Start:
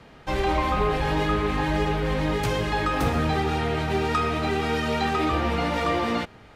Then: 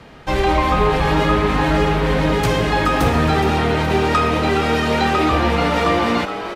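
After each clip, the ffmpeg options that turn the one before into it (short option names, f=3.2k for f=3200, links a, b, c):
-filter_complex "[0:a]asplit=7[a][b][c][d][e][f][g];[b]adelay=419,afreqshift=120,volume=-10.5dB[h];[c]adelay=838,afreqshift=240,volume=-16.2dB[i];[d]adelay=1257,afreqshift=360,volume=-21.9dB[j];[e]adelay=1676,afreqshift=480,volume=-27.5dB[k];[f]adelay=2095,afreqshift=600,volume=-33.2dB[l];[g]adelay=2514,afreqshift=720,volume=-38.9dB[m];[a][h][i][j][k][l][m]amix=inputs=7:normalize=0,volume=7dB"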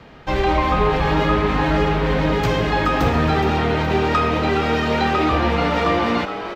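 -af "equalizer=f=10k:w=1.3:g=-14.5,volume=-1.5dB"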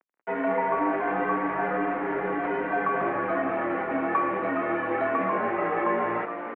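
-af "acrusher=bits=4:mix=0:aa=0.5,highpass=f=410:t=q:w=0.5412,highpass=f=410:t=q:w=1.307,lowpass=f=2.2k:t=q:w=0.5176,lowpass=f=2.2k:t=q:w=0.7071,lowpass=f=2.2k:t=q:w=1.932,afreqshift=-120,volume=-5dB"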